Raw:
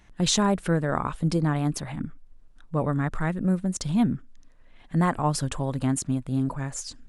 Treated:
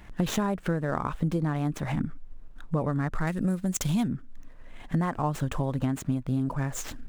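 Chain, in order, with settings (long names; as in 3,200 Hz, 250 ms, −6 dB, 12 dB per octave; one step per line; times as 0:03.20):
running median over 9 samples
0:03.27–0:04.08: high-shelf EQ 2,800 Hz +12 dB
downward compressor 6 to 1, threshold −33 dBFS, peak gain reduction 15 dB
level +8.5 dB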